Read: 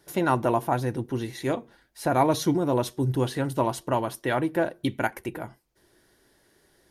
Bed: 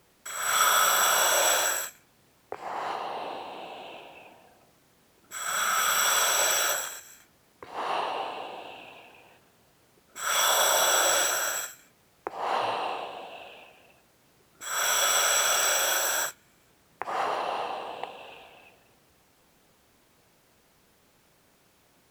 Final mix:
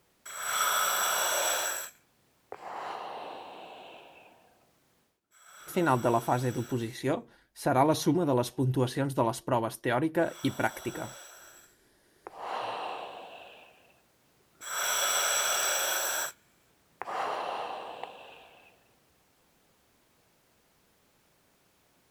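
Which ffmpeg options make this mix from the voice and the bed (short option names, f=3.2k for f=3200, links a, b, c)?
-filter_complex "[0:a]adelay=5600,volume=-2.5dB[a];[1:a]volume=14dB,afade=t=out:st=4.98:d=0.22:silence=0.125893,afade=t=in:st=11.63:d=1.44:silence=0.105925[b];[a][b]amix=inputs=2:normalize=0"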